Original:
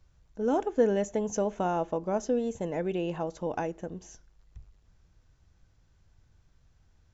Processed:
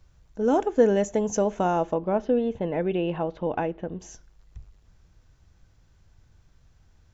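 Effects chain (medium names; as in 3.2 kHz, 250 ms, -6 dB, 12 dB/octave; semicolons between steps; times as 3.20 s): 1.94–4.00 s: Chebyshev low-pass 3.3 kHz, order 3; trim +5 dB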